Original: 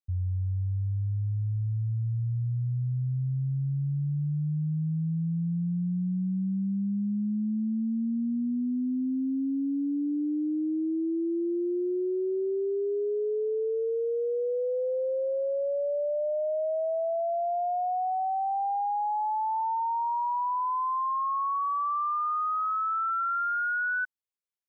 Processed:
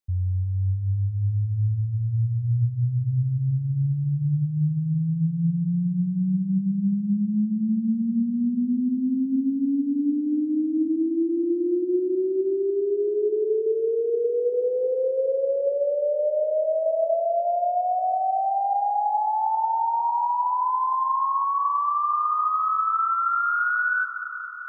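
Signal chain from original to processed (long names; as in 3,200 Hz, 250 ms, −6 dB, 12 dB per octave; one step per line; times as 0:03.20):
convolution reverb RT60 5.7 s, pre-delay 40 ms, DRR 7 dB
level +4.5 dB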